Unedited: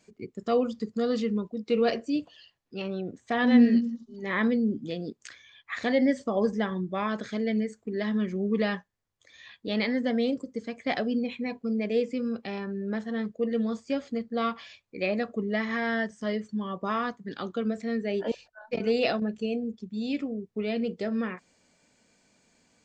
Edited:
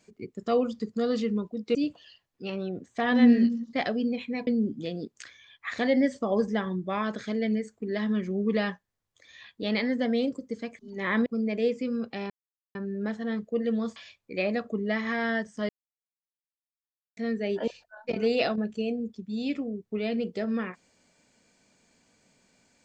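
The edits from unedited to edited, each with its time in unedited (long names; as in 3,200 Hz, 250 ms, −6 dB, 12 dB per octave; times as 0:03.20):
0:01.75–0:02.07: remove
0:04.05–0:04.52: swap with 0:10.84–0:11.58
0:12.62: splice in silence 0.45 s
0:13.83–0:14.60: remove
0:16.33–0:17.81: silence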